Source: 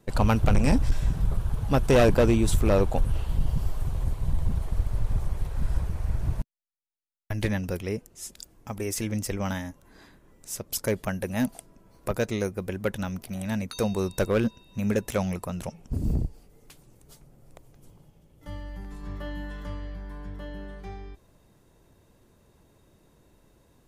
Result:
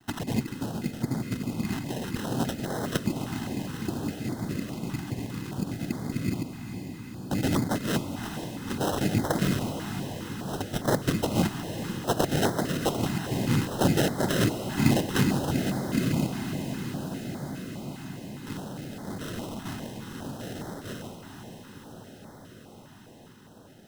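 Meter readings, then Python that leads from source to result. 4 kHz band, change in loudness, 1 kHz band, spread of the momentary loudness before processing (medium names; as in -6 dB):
+5.5 dB, -2.0 dB, +1.5 dB, 18 LU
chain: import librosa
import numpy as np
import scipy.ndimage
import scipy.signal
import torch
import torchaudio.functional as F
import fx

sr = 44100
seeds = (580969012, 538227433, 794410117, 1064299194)

y = fx.over_compress(x, sr, threshold_db=-24.0, ratio=-0.5)
y = fx.noise_vocoder(y, sr, seeds[0], bands=4)
y = fx.sample_hold(y, sr, seeds[1], rate_hz=2300.0, jitter_pct=0)
y = fx.echo_diffused(y, sr, ms=465, feedback_pct=79, wet_db=-9)
y = fx.filter_held_notch(y, sr, hz=4.9, low_hz=520.0, high_hz=2700.0)
y = y * 10.0 ** (2.5 / 20.0)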